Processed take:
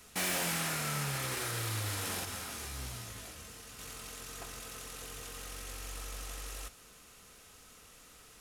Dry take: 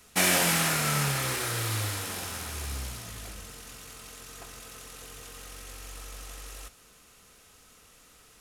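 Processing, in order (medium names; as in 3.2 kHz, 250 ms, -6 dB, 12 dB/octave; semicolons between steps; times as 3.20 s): wavefolder -18.5 dBFS; peak limiter -27 dBFS, peak gain reduction 8.5 dB; 2.25–3.79 s: detune thickener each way 11 cents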